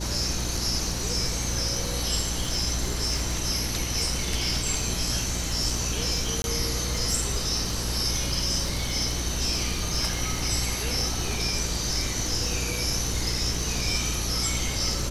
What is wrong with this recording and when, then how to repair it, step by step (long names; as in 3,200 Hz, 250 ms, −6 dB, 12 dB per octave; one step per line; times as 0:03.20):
surface crackle 22 per second −30 dBFS
mains hum 60 Hz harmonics 6 −32 dBFS
0:06.42–0:06.44: drop-out 21 ms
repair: click removal
hum removal 60 Hz, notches 6
repair the gap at 0:06.42, 21 ms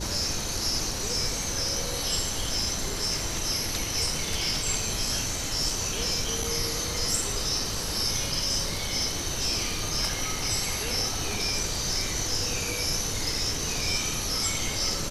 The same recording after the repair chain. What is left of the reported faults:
none of them is left